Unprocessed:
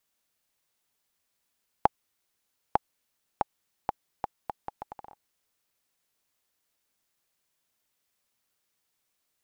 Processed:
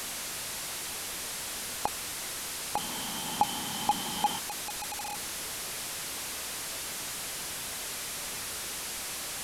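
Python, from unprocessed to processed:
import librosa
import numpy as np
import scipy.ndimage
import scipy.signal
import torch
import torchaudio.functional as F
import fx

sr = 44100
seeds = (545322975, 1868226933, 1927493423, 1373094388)

y = fx.delta_mod(x, sr, bps=64000, step_db=-22.0)
y = fx.small_body(y, sr, hz=(210.0, 840.0, 3100.0), ring_ms=25, db=fx.line((2.76, 12.0), (4.38, 15.0)), at=(2.76, 4.38), fade=0.02)
y = y * librosa.db_to_amplitude(-7.5)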